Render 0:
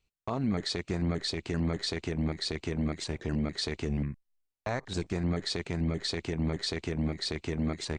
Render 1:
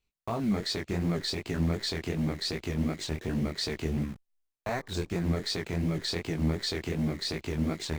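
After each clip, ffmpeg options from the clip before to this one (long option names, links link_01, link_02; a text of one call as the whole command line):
ffmpeg -i in.wav -filter_complex "[0:a]asplit=2[link_01][link_02];[link_02]acrusher=bits=6:mix=0:aa=0.000001,volume=-5dB[link_03];[link_01][link_03]amix=inputs=2:normalize=0,flanger=delay=17.5:depth=7.8:speed=2.7" out.wav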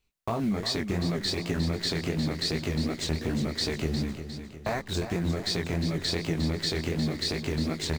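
ffmpeg -i in.wav -filter_complex "[0:a]acompressor=threshold=-31dB:ratio=3,asplit=2[link_01][link_02];[link_02]aecho=0:1:356|712|1068|1424|1780:0.316|0.158|0.0791|0.0395|0.0198[link_03];[link_01][link_03]amix=inputs=2:normalize=0,volume=5dB" out.wav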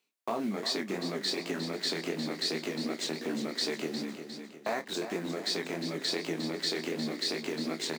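ffmpeg -i in.wav -filter_complex "[0:a]highpass=frequency=230:width=0.5412,highpass=frequency=230:width=1.3066,areverse,acompressor=mode=upward:threshold=-36dB:ratio=2.5,areverse,asplit=2[link_01][link_02];[link_02]adelay=31,volume=-13dB[link_03];[link_01][link_03]amix=inputs=2:normalize=0,volume=-2dB" out.wav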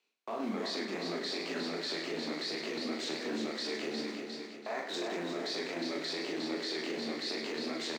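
ffmpeg -i in.wav -filter_complex "[0:a]acrossover=split=220 6600:gain=0.141 1 0.2[link_01][link_02][link_03];[link_01][link_02][link_03]amix=inputs=3:normalize=0,alimiter=level_in=6dB:limit=-24dB:level=0:latency=1:release=14,volume=-6dB,asplit=2[link_04][link_05];[link_05]aecho=0:1:40|100|190|325|527.5:0.631|0.398|0.251|0.158|0.1[link_06];[link_04][link_06]amix=inputs=2:normalize=0" out.wav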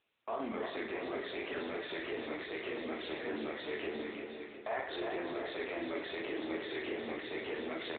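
ffmpeg -i in.wav -af "highpass=340,volume=1.5dB" -ar 8000 -c:a libopencore_amrnb -b:a 10200 out.amr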